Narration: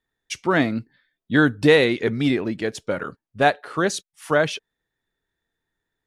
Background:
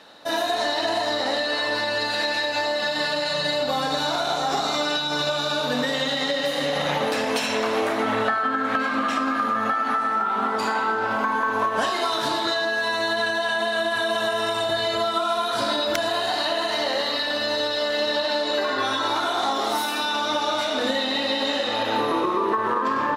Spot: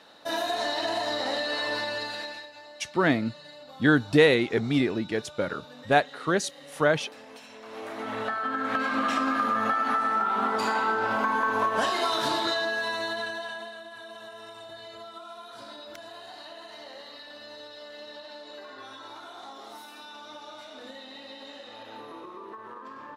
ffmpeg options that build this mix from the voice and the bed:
-filter_complex "[0:a]adelay=2500,volume=-3.5dB[a];[1:a]volume=15.5dB,afade=t=out:st=1.75:d=0.76:silence=0.125893,afade=t=in:st=7.61:d=1.46:silence=0.0944061,afade=t=out:st=12.34:d=1.46:silence=0.133352[b];[a][b]amix=inputs=2:normalize=0"

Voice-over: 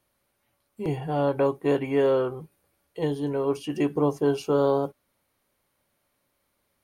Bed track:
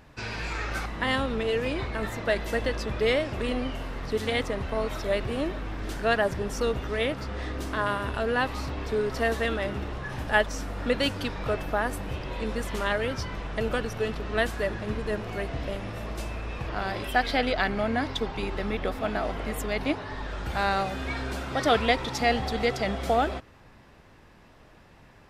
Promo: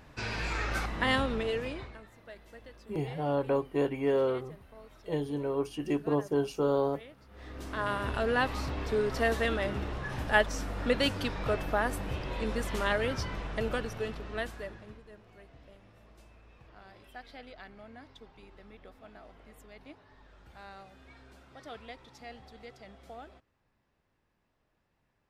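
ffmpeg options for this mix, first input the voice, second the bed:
-filter_complex "[0:a]adelay=2100,volume=-5.5dB[a];[1:a]volume=20dB,afade=t=out:st=1.14:d=0.9:silence=0.0794328,afade=t=in:st=7.29:d=0.82:silence=0.0891251,afade=t=out:st=13.26:d=1.78:silence=0.0891251[b];[a][b]amix=inputs=2:normalize=0"

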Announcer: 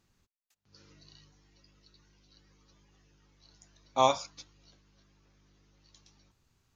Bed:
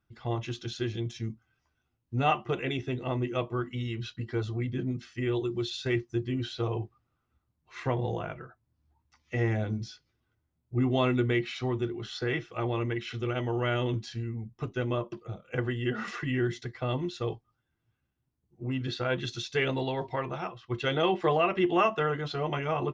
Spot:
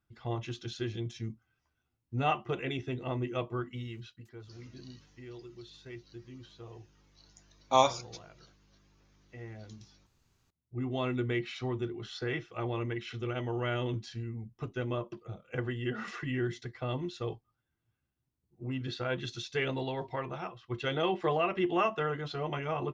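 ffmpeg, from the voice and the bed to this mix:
-filter_complex "[0:a]adelay=3750,volume=0.5dB[a];[1:a]volume=10dB,afade=t=out:st=3.57:d=0.7:silence=0.199526,afade=t=in:st=10.2:d=1.29:silence=0.211349[b];[a][b]amix=inputs=2:normalize=0"

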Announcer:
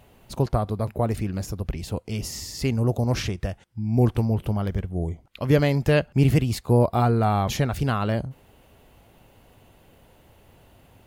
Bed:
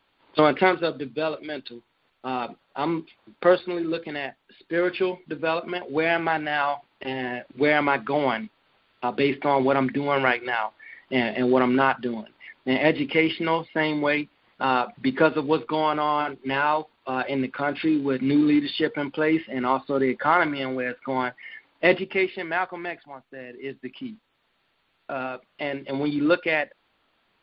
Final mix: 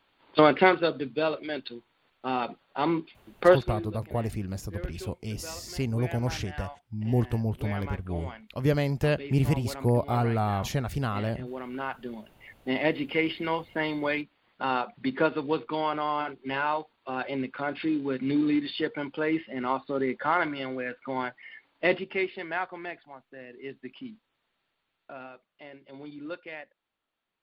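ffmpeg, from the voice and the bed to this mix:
-filter_complex "[0:a]adelay=3150,volume=-5.5dB[a];[1:a]volume=12dB,afade=t=out:st=3.5:d=0.44:silence=0.133352,afade=t=in:st=11.65:d=0.85:silence=0.237137,afade=t=out:st=23.94:d=1.67:silence=0.251189[b];[a][b]amix=inputs=2:normalize=0"

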